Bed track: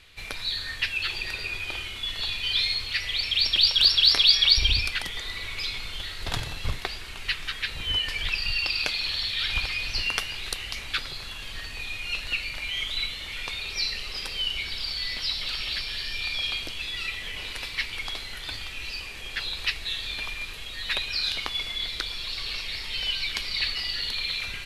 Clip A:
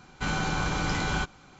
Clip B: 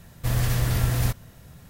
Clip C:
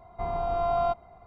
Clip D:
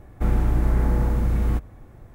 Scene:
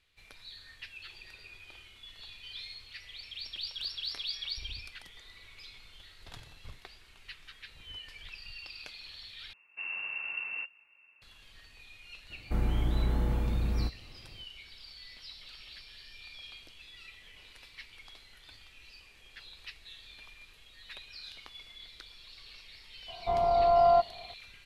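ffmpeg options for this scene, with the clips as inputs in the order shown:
ffmpeg -i bed.wav -i cue0.wav -i cue1.wav -i cue2.wav -i cue3.wav -filter_complex "[0:a]volume=-19dB[link_01];[2:a]lowpass=frequency=2400:width_type=q:width=0.5098,lowpass=frequency=2400:width_type=q:width=0.6013,lowpass=frequency=2400:width_type=q:width=0.9,lowpass=frequency=2400:width_type=q:width=2.563,afreqshift=-2800[link_02];[3:a]equalizer=frequency=630:width=1.2:gain=8[link_03];[link_01]asplit=2[link_04][link_05];[link_04]atrim=end=9.534[link_06];[link_02]atrim=end=1.69,asetpts=PTS-STARTPTS,volume=-15.5dB[link_07];[link_05]atrim=start=11.216[link_08];[4:a]atrim=end=2.14,asetpts=PTS-STARTPTS,volume=-8.5dB,afade=type=in:duration=0.004:curve=hsin,afade=type=out:start_time=2.136:duration=0.004:curve=hsin,adelay=12300[link_09];[link_03]atrim=end=1.26,asetpts=PTS-STARTPTS,volume=-3.5dB,afade=type=in:duration=0.004:curve=hsin,afade=type=out:start_time=1.256:duration=0.004:curve=hsin,adelay=1017828S[link_10];[link_06][link_07]acrossfade=duration=0.004:curve1=hsin:curve2=hsin[link_11];[link_11][link_08]acrossfade=duration=0.004:curve1=hsin:curve2=hsin[link_12];[link_12][link_09][link_10]amix=inputs=3:normalize=0" out.wav

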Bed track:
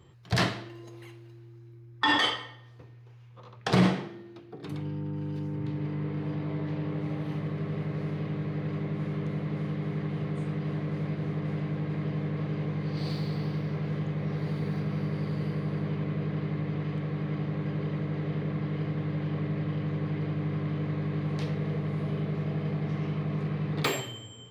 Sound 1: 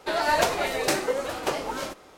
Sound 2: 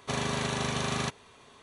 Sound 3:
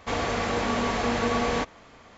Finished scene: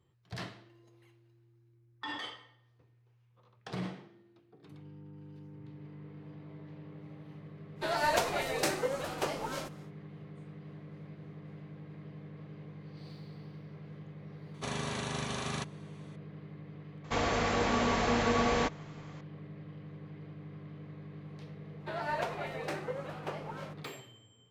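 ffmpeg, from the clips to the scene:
ffmpeg -i bed.wav -i cue0.wav -i cue1.wav -i cue2.wav -filter_complex "[1:a]asplit=2[link_01][link_02];[0:a]volume=-16dB[link_03];[link_02]bass=frequency=250:gain=-6,treble=frequency=4000:gain=-14[link_04];[link_01]atrim=end=2.17,asetpts=PTS-STARTPTS,volume=-6.5dB,afade=type=in:duration=0.1,afade=type=out:start_time=2.07:duration=0.1,adelay=7750[link_05];[2:a]atrim=end=1.62,asetpts=PTS-STARTPTS,volume=-6dB,afade=type=in:duration=0.004:curve=hsin,afade=type=out:start_time=1.616:duration=0.004:curve=hsin,adelay=14540[link_06];[3:a]atrim=end=2.17,asetpts=PTS-STARTPTS,volume=-3dB,afade=type=in:duration=0.004:curve=hsin,afade=type=out:start_time=2.166:duration=0.004:curve=hsin,adelay=17040[link_07];[link_04]atrim=end=2.17,asetpts=PTS-STARTPTS,volume=-11.5dB,afade=type=in:duration=0.004:curve=hsin,afade=type=out:start_time=2.166:duration=0.004:curve=hsin,adelay=961380S[link_08];[link_03][link_05][link_06][link_07][link_08]amix=inputs=5:normalize=0" out.wav

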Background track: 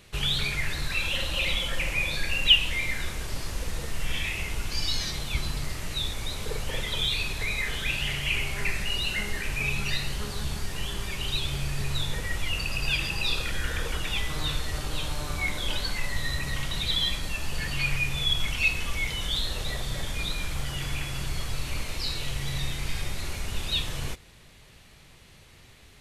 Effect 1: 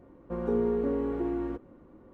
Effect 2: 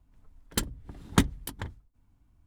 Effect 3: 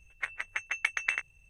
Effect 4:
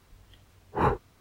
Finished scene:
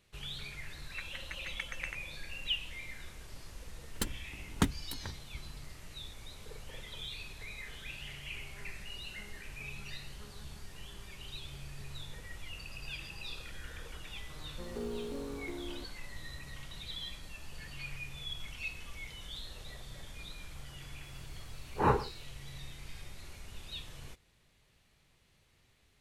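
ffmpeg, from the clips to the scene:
ffmpeg -i bed.wav -i cue0.wav -i cue1.wav -i cue2.wav -i cue3.wav -filter_complex "[0:a]volume=-16dB[link_01];[1:a]acrusher=bits=9:mode=log:mix=0:aa=0.000001[link_02];[4:a]aecho=1:1:117:0.158[link_03];[3:a]atrim=end=1.49,asetpts=PTS-STARTPTS,volume=-11.5dB,afade=type=in:duration=0.004:curve=hsin,afade=type=out:start_time=1.486:duration=0.004:curve=hsin,adelay=750[link_04];[2:a]atrim=end=2.46,asetpts=PTS-STARTPTS,volume=-6.5dB,afade=type=in:duration=0.004:curve=hsin,afade=type=out:start_time=2.456:duration=0.004:curve=hsin,adelay=3440[link_05];[link_02]atrim=end=2.13,asetpts=PTS-STARTPTS,volume=-12.5dB,afade=type=in:duration=0.004:curve=hsin,afade=type=out:start_time=2.126:duration=0.004:curve=hsin,adelay=629748S[link_06];[link_03]atrim=end=1.2,asetpts=PTS-STARTPTS,volume=-2.5dB,afade=type=in:duration=0.004:curve=hsin,afade=type=out:start_time=1.196:duration=0.004:curve=hsin,adelay=21030[link_07];[link_01][link_04][link_05][link_06][link_07]amix=inputs=5:normalize=0" out.wav

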